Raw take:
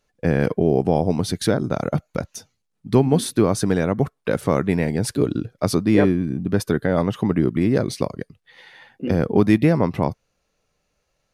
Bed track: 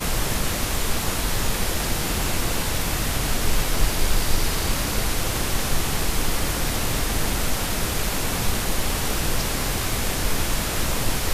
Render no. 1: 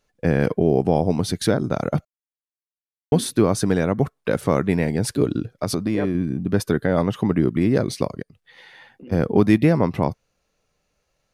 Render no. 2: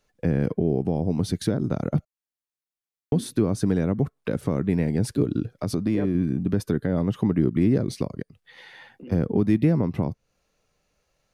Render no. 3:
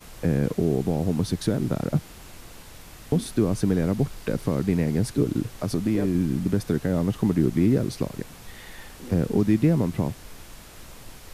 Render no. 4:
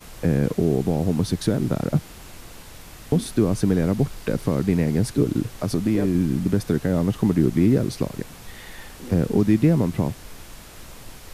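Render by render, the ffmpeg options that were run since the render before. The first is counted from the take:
-filter_complex "[0:a]asettb=1/sr,asplit=3[a][b][c];[a]atrim=end=5.494[d];[b]atrim=start=5.49:end=6.15,asetpts=PTS-STARTPTS,afade=t=in:d=0.004:c=qsin,afade=t=out:st=0.656:d=0.004:c=qsin,acompressor=threshold=-17dB:ratio=6:attack=3.2:release=140:knee=1:detection=peak[e];[c]atrim=start=6.146[f];[d][e]acrossfade=d=0.004:c1=hsin:c2=qsin[g];[g][f]acrossfade=d=0.004:c1=qsin:c2=hsin,asplit=3[h][i][j];[h]afade=t=out:st=8.21:d=0.02[k];[i]acompressor=threshold=-41dB:ratio=4:attack=3.2:release=140:knee=1:detection=peak,afade=t=in:st=8.21:d=0.02,afade=t=out:st=9.11:d=0.02[l];[j]afade=t=in:st=9.11:d=0.02[m];[k][l][m]amix=inputs=3:normalize=0,asplit=3[n][o][p];[n]atrim=end=2.05,asetpts=PTS-STARTPTS,afade=t=out:st=2.046:d=0.004:c=hsin[q];[o]atrim=start=2.05:end=3.12,asetpts=PTS-STARTPTS,volume=0[r];[p]atrim=start=3.12,asetpts=PTS-STARTPTS,afade=t=in:d=0.004:c=hsin[s];[q][r][s]concat=n=3:v=0:a=1"
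-filter_complex "[0:a]alimiter=limit=-8.5dB:level=0:latency=1:release=163,acrossover=split=390[a][b];[b]acompressor=threshold=-37dB:ratio=2.5[c];[a][c]amix=inputs=2:normalize=0"
-filter_complex "[1:a]volume=-20.5dB[a];[0:a][a]amix=inputs=2:normalize=0"
-af "volume=2.5dB"

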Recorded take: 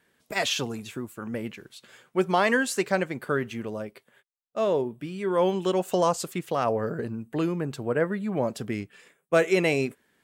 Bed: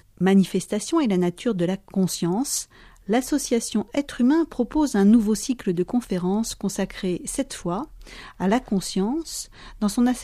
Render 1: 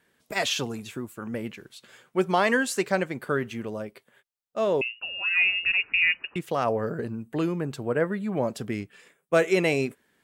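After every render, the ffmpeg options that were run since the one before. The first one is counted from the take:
-filter_complex "[0:a]asettb=1/sr,asplit=3[a][b][c];[a]atrim=end=4.814[d];[b]atrim=start=4.81:end=6.36,asetpts=PTS-STARTPTS,afade=t=in:d=0.004:c=qsin,afade=t=out:st=1.546:d=0.004:c=qsin,lowpass=f=2.6k:t=q:w=0.5098,lowpass=f=2.6k:t=q:w=0.6013,lowpass=f=2.6k:t=q:w=0.9,lowpass=f=2.6k:t=q:w=2.563,afreqshift=-3000[e];[c]atrim=start=6.356[f];[d][e]acrossfade=d=0.004:c1=hsin:c2=qsin[g];[g][f]acrossfade=d=0.004:c1=qsin:c2=hsin"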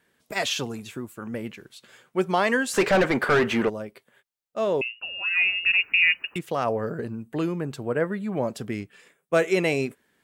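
-filter_complex "[0:a]asplit=3[a][b][c];[a]afade=t=out:st=2.73:d=0.02[d];[b]asplit=2[e][f];[f]highpass=f=720:p=1,volume=29dB,asoftclip=type=tanh:threshold=-10.5dB[g];[e][g]amix=inputs=2:normalize=0,lowpass=f=1.6k:p=1,volume=-6dB,afade=t=in:st=2.73:d=0.02,afade=t=out:st=3.68:d=0.02[h];[c]afade=t=in:st=3.68:d=0.02[i];[d][h][i]amix=inputs=3:normalize=0,asplit=3[j][k][l];[j]afade=t=out:st=5.61:d=0.02[m];[k]aemphasis=mode=production:type=75fm,afade=t=in:st=5.61:d=0.02,afade=t=out:st=6.37:d=0.02[n];[l]afade=t=in:st=6.37:d=0.02[o];[m][n][o]amix=inputs=3:normalize=0"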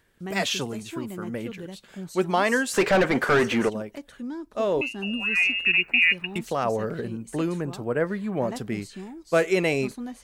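-filter_complex "[1:a]volume=-15.5dB[a];[0:a][a]amix=inputs=2:normalize=0"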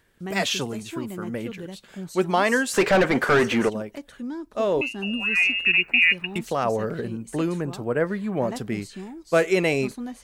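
-af "volume=1.5dB"

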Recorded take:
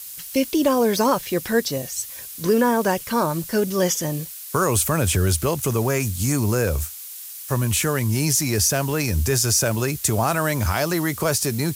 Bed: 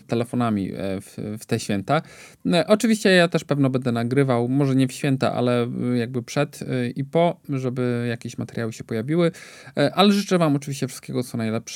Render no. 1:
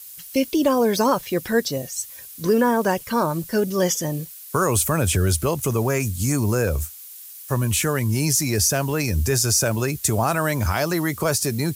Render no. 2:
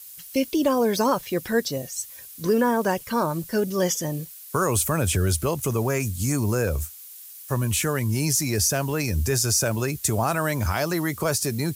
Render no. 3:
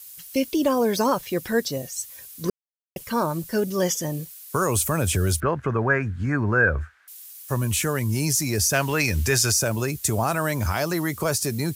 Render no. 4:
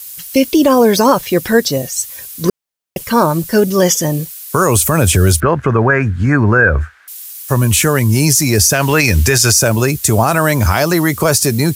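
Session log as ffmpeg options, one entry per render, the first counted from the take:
-af "afftdn=nr=6:nf=-37"
-af "volume=-2.5dB"
-filter_complex "[0:a]asettb=1/sr,asplit=3[a][b][c];[a]atrim=end=5.404[d];[b]atrim=start=5.4:end=7.08,asetpts=PTS-STARTPTS,afade=t=in:d=0.004:c=qsin,afade=t=out:st=1.676:d=0.004:c=qsin,lowpass=f=1.6k:t=q:w=7.2[e];[c]atrim=start=7.076[f];[d][e]acrossfade=d=0.004:c1=hsin:c2=qsin[g];[g][f]acrossfade=d=0.004:c1=qsin:c2=hsin,asettb=1/sr,asplit=3[h][i][j];[h]atrim=end=8.734[k];[i]atrim=start=8.73:end=9.52,asetpts=PTS-STARTPTS,afade=t=in:d=0.004:c=qsin,afade=t=out:st=0.786:d=0.004:c=qsin,equalizer=f=2.2k:t=o:w=2.4:g=9[l];[j]atrim=start=9.516[m];[k][l]acrossfade=d=0.004:c1=hsin:c2=qsin[n];[n][m]acrossfade=d=0.004:c1=qsin:c2=hsin,asplit=3[o][p][q];[o]atrim=end=2.5,asetpts=PTS-STARTPTS,afade=t=out:st=2.496:d=0.004:c=hsin[r];[p]atrim=start=2.5:end=2.96,asetpts=PTS-STARTPTS,volume=0[s];[q]atrim=start=2.96,asetpts=PTS-STARTPTS,afade=t=in:d=0.004:c=hsin[t];[r][s][t]concat=n=3:v=0:a=1"
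-af "alimiter=level_in=12dB:limit=-1dB:release=50:level=0:latency=1"

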